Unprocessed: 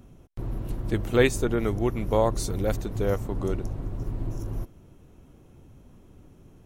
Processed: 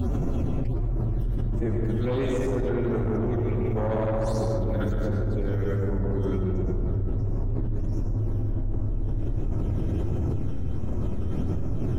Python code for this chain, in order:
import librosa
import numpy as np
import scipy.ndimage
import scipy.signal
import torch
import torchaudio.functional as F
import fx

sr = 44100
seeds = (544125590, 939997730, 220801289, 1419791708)

y = fx.doppler_pass(x, sr, speed_mps=8, closest_m=7.3, pass_at_s=1.98)
y = fx.peak_eq(y, sr, hz=88.0, db=6.0, octaves=0.49)
y = fx.stretch_vocoder(y, sr, factor=1.8)
y = fx.phaser_stages(y, sr, stages=12, low_hz=750.0, high_hz=4200.0, hz=1.4, feedback_pct=25)
y = fx.rev_freeverb(y, sr, rt60_s=2.8, hf_ratio=0.3, predelay_ms=70, drr_db=-2.0)
y = 10.0 ** (-18.5 / 20.0) * np.tanh(y / 10.0 ** (-18.5 / 20.0))
y = fx.peak_eq(y, sr, hz=12000.0, db=-11.0, octaves=1.6)
y = fx.env_flatten(y, sr, amount_pct=100)
y = F.gain(torch.from_numpy(y), -4.0).numpy()